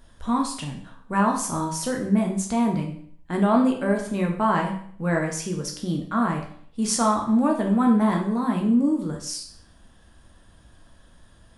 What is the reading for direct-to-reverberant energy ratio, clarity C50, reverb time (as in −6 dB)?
1.0 dB, 7.0 dB, 0.60 s